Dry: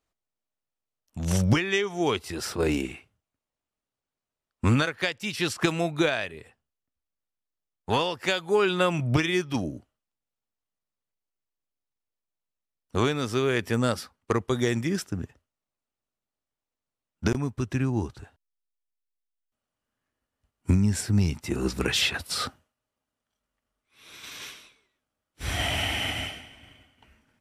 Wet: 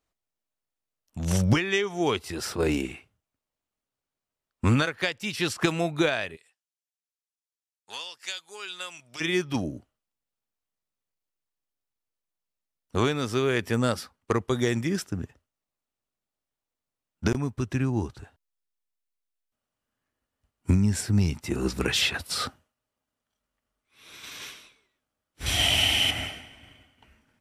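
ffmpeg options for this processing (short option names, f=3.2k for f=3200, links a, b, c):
-filter_complex "[0:a]asplit=3[a][b][c];[a]afade=t=out:st=6.35:d=0.02[d];[b]bandpass=f=6.9k:t=q:w=0.89,afade=t=in:st=6.35:d=0.02,afade=t=out:st=9.2:d=0.02[e];[c]afade=t=in:st=9.2:d=0.02[f];[d][e][f]amix=inputs=3:normalize=0,asettb=1/sr,asplit=3[g][h][i];[g]atrim=end=25.464[j];[h]atrim=start=25.46:end=26.11,asetpts=PTS-STARTPTS,afade=t=in:d=0.004:c=qsin,afade=t=out:st=0.646:d=0.004:c=qsin,highshelf=f=2.3k:t=q:w=1.5:g=7[k];[i]atrim=start=26.106[l];[j][k]acrossfade=d=0.004:c1=hsin:c2=qsin[m];[m][l]acrossfade=d=0.004:c1=qsin:c2=hsin"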